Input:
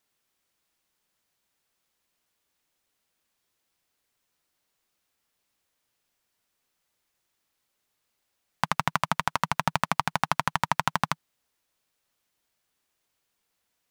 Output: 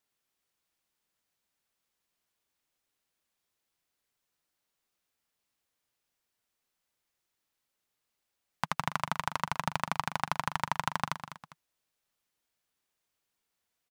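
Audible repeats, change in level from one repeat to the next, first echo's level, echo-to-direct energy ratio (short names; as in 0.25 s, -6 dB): 2, -8.0 dB, -11.5 dB, -11.0 dB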